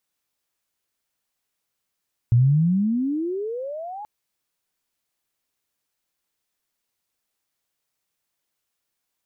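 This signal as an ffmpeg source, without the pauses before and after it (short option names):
-f lavfi -i "aevalsrc='pow(10,(-12-20*t/1.73)/20)*sin(2*PI*114*1.73/(35*log(2)/12)*(exp(35*log(2)/12*t/1.73)-1))':d=1.73:s=44100"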